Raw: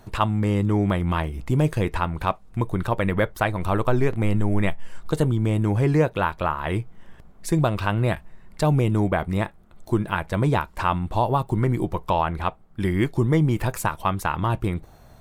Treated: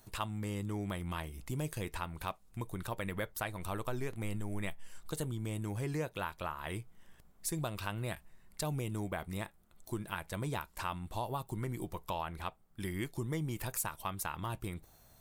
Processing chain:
first-order pre-emphasis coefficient 0.8
downward compressor 1.5 to 1, threshold −35 dBFS, peak gain reduction 3.5 dB
level −1 dB

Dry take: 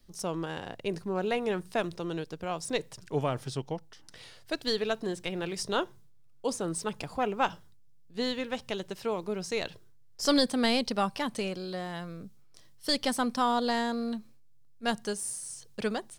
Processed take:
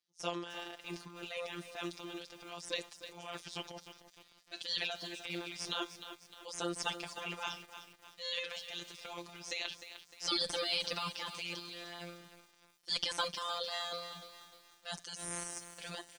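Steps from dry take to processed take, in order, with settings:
noise gate −42 dBFS, range −14 dB
first difference
comb filter 6.1 ms, depth 90%
transient designer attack −7 dB, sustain +11 dB
phases set to zero 173 Hz
tube saturation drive 19 dB, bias 0.3
high-frequency loss of the air 120 metres
feedback echo at a low word length 304 ms, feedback 55%, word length 10 bits, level −10.5 dB
level +8 dB

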